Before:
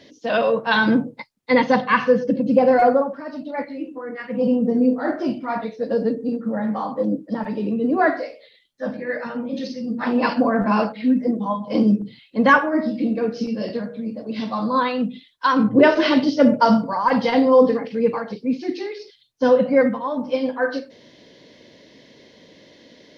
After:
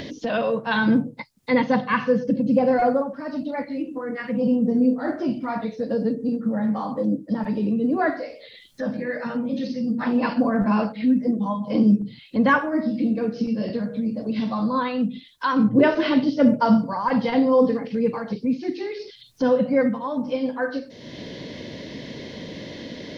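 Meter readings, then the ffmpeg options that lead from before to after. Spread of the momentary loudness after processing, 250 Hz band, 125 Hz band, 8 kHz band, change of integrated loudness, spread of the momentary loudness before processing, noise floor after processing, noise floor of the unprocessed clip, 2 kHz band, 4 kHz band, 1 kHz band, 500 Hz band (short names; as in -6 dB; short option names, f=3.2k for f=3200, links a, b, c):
17 LU, -0.5 dB, +1.5 dB, n/a, -2.5 dB, 14 LU, -46 dBFS, -53 dBFS, -4.5 dB, -4.5 dB, -4.5 dB, -4.0 dB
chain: -filter_complex "[0:a]acompressor=mode=upward:threshold=-18dB:ratio=2.5,bass=f=250:g=8,treble=f=4k:g=6,acrossover=split=4000[a][b];[b]acompressor=threshold=-50dB:ratio=4:attack=1:release=60[c];[a][c]amix=inputs=2:normalize=0,volume=-5dB"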